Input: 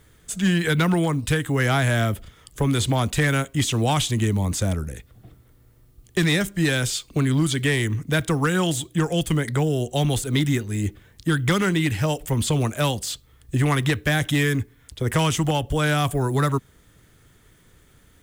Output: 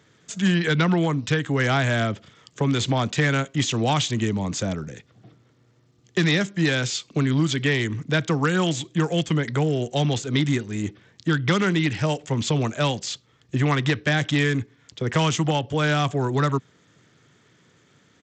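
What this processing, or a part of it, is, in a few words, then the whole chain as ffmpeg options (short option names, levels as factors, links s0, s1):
Bluetooth headset: -af "highpass=f=120:w=0.5412,highpass=f=120:w=1.3066,aresample=16000,aresample=44100" -ar 32000 -c:a sbc -b:a 64k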